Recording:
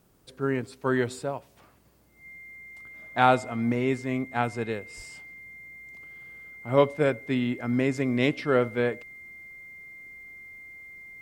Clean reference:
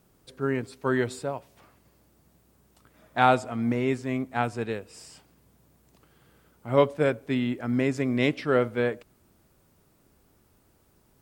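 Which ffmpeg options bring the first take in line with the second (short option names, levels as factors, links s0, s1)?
-filter_complex "[0:a]bandreject=f=2100:w=30,asplit=3[s0][s1][s2];[s0]afade=t=out:st=4.96:d=0.02[s3];[s1]highpass=f=140:w=0.5412,highpass=f=140:w=1.3066,afade=t=in:st=4.96:d=0.02,afade=t=out:st=5.08:d=0.02[s4];[s2]afade=t=in:st=5.08:d=0.02[s5];[s3][s4][s5]amix=inputs=3:normalize=0"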